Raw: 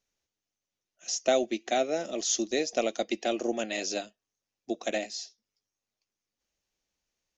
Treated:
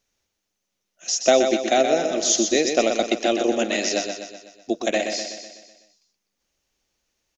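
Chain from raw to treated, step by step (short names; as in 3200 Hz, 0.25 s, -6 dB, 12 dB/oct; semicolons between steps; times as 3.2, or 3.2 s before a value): feedback echo 0.125 s, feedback 53%, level -6.5 dB; gain +8 dB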